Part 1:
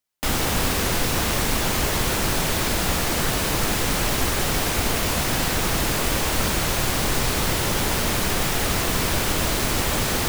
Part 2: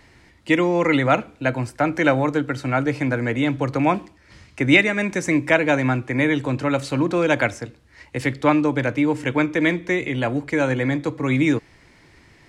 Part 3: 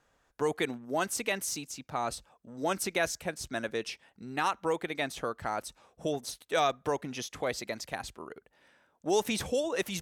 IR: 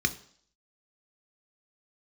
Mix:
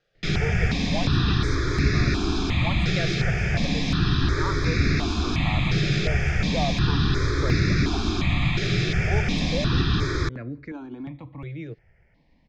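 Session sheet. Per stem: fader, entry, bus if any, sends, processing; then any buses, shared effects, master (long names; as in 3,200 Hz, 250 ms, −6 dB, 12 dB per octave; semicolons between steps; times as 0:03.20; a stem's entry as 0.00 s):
−1.5 dB, 0.00 s, bus A, send −6.5 dB, no processing
−16.5 dB, 0.15 s, bus A, no send, spectral tilt −2 dB per octave
+0.5 dB, 0.00 s, no bus, no send, no processing
bus A: 0.0 dB, compressor whose output falls as the input rises −30 dBFS; brickwall limiter −24.5 dBFS, peak gain reduction 8 dB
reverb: on, RT60 0.55 s, pre-delay 3 ms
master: low-pass filter 4,800 Hz 24 dB per octave; step-sequenced phaser 2.8 Hz 260–3,100 Hz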